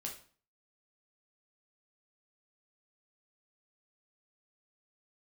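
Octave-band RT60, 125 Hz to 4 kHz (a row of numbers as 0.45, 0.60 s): 0.55, 0.50, 0.40, 0.45, 0.40, 0.40 s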